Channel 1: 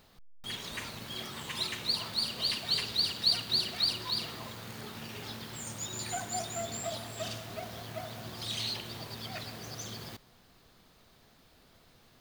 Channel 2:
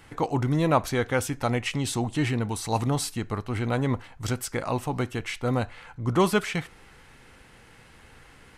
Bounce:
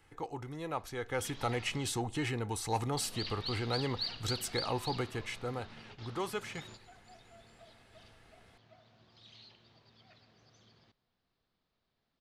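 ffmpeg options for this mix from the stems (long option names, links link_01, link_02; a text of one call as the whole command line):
ffmpeg -i stem1.wav -i stem2.wav -filter_complex "[0:a]lowpass=frequency=5200:width=0.5412,lowpass=frequency=5200:width=1.3066,adelay=750,volume=-9dB,asplit=3[link_01][link_02][link_03];[link_01]atrim=end=1.88,asetpts=PTS-STARTPTS,afade=type=out:start_time=1.876:duration=0.004:curve=hsin[link_04];[link_02]atrim=start=1.88:end=2.97,asetpts=PTS-STARTPTS,volume=0[link_05];[link_03]atrim=start=2.97,asetpts=PTS-STARTPTS,afade=type=in:duration=0.004:curve=hsin[link_06];[link_04][link_05][link_06]concat=n=3:v=0:a=1[link_07];[1:a]aecho=1:1:2.4:0.34,acrossover=split=430|3000[link_08][link_09][link_10];[link_08]acompressor=threshold=-28dB:ratio=6[link_11];[link_11][link_09][link_10]amix=inputs=3:normalize=0,volume=-5.5dB,afade=type=in:start_time=0.94:duration=0.47:silence=0.375837,afade=type=out:start_time=4.92:duration=0.78:silence=0.446684,asplit=2[link_12][link_13];[link_13]apad=whole_len=571531[link_14];[link_07][link_14]sidechaingate=range=-12dB:threshold=-57dB:ratio=16:detection=peak[link_15];[link_15][link_12]amix=inputs=2:normalize=0,asoftclip=type=tanh:threshold=-20.5dB" out.wav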